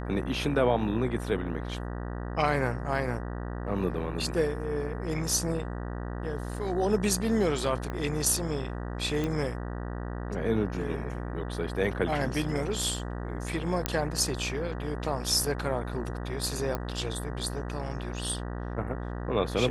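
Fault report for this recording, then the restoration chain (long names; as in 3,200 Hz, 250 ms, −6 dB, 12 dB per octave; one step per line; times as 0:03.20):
mains buzz 60 Hz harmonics 32 −35 dBFS
0:07.90: click −22 dBFS
0:09.24: click −18 dBFS
0:13.86: click −9 dBFS
0:16.75: click −17 dBFS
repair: click removal
hum removal 60 Hz, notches 32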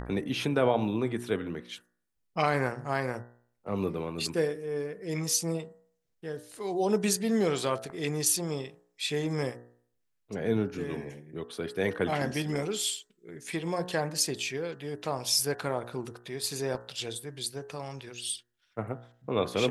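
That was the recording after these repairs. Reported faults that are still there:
0:07.90: click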